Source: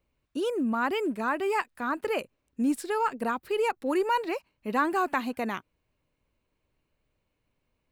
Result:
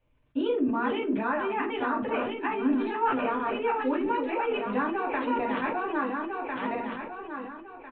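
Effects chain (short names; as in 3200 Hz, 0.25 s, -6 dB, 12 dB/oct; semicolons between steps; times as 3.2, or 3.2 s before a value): regenerating reverse delay 0.675 s, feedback 50%, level -4.5 dB; compressor, threshold -30 dBFS, peak gain reduction 10.5 dB; downsampling 8000 Hz; reverb, pre-delay 3 ms, DRR -3 dB; sustainer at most 46 dB/s; gain -2.5 dB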